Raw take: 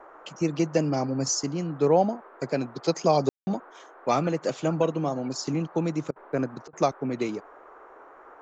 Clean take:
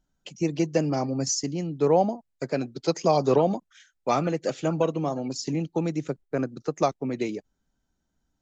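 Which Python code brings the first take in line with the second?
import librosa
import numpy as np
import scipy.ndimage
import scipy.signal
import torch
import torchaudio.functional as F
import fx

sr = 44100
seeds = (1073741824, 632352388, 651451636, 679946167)

y = fx.fix_ambience(x, sr, seeds[0], print_start_s=7.89, print_end_s=8.39, start_s=3.29, end_s=3.47)
y = fx.fix_interpolate(y, sr, at_s=(6.11, 6.68), length_ms=49.0)
y = fx.noise_reduce(y, sr, print_start_s=7.89, print_end_s=8.39, reduce_db=26.0)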